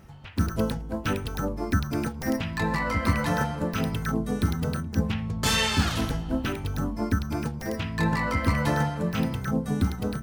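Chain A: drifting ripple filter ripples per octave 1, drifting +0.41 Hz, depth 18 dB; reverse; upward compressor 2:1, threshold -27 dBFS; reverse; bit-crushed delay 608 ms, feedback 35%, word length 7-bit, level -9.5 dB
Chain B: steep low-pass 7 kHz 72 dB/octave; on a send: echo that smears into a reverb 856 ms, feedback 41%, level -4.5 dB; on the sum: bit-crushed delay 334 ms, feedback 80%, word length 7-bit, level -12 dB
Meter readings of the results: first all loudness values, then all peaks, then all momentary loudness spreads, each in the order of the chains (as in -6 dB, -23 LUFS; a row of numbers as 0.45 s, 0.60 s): -24.0 LUFS, -25.5 LUFS; -4.5 dBFS, -8.5 dBFS; 6 LU, 4 LU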